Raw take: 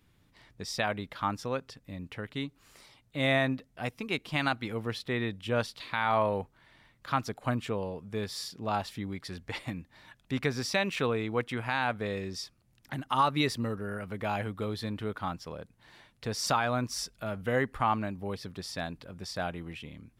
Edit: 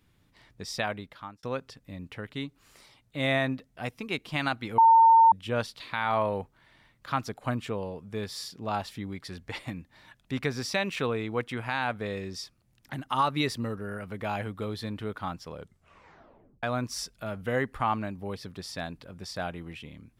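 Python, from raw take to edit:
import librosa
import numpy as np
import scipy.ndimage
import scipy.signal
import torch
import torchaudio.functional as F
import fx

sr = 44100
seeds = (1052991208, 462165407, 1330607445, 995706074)

y = fx.edit(x, sr, fx.fade_out_span(start_s=0.83, length_s=0.6),
    fx.bleep(start_s=4.78, length_s=0.54, hz=907.0, db=-13.5),
    fx.tape_stop(start_s=15.54, length_s=1.09), tone=tone)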